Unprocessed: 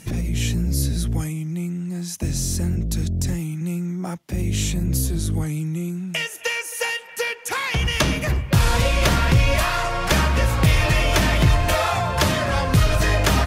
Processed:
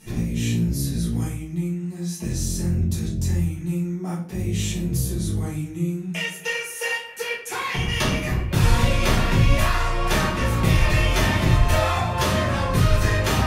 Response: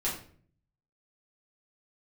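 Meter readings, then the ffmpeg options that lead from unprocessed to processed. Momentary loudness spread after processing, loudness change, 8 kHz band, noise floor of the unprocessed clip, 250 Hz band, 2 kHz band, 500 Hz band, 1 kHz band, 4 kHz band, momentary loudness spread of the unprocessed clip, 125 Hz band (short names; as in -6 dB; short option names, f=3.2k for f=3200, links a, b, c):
8 LU, -1.5 dB, -3.5 dB, -36 dBFS, 0.0 dB, -2.0 dB, -2.0 dB, -2.0 dB, -3.0 dB, 9 LU, -1.0 dB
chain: -filter_complex "[1:a]atrim=start_sample=2205[a];[0:a][a]afir=irnorm=-1:irlink=0,volume=-8dB"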